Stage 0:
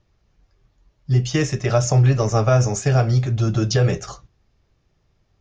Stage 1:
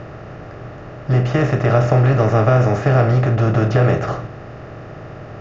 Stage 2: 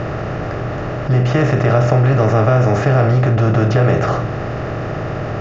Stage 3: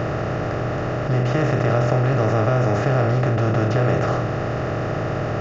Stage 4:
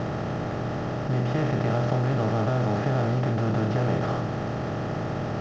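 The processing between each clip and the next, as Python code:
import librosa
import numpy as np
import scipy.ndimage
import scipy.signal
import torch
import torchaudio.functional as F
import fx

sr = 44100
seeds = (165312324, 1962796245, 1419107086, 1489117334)

y1 = fx.bin_compress(x, sr, power=0.4)
y1 = scipy.signal.sosfilt(scipy.signal.cheby1(2, 1.0, 1900.0, 'lowpass', fs=sr, output='sos'), y1)
y2 = fx.env_flatten(y1, sr, amount_pct=50)
y3 = fx.bin_compress(y2, sr, power=0.6)
y3 = F.gain(torch.from_numpy(y3), -7.5).numpy()
y4 = fx.cvsd(y3, sr, bps=32000)
y4 = fx.small_body(y4, sr, hz=(210.0, 860.0, 3200.0), ring_ms=25, db=8)
y4 = F.gain(torch.from_numpy(y4), -7.5).numpy()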